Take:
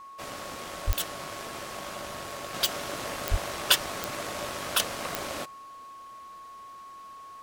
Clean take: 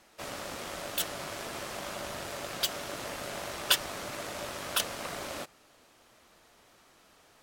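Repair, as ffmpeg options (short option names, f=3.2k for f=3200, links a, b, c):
-filter_complex "[0:a]adeclick=t=4,bandreject=f=1.1k:w=30,asplit=3[a][b][c];[a]afade=t=out:st=0.86:d=0.02[d];[b]highpass=f=140:w=0.5412,highpass=f=140:w=1.3066,afade=t=in:st=0.86:d=0.02,afade=t=out:st=0.98:d=0.02[e];[c]afade=t=in:st=0.98:d=0.02[f];[d][e][f]amix=inputs=3:normalize=0,asplit=3[g][h][i];[g]afade=t=out:st=3.3:d=0.02[j];[h]highpass=f=140:w=0.5412,highpass=f=140:w=1.3066,afade=t=in:st=3.3:d=0.02,afade=t=out:st=3.42:d=0.02[k];[i]afade=t=in:st=3.42:d=0.02[l];[j][k][l]amix=inputs=3:normalize=0,asetnsamples=n=441:p=0,asendcmd='2.54 volume volume -3.5dB',volume=0dB"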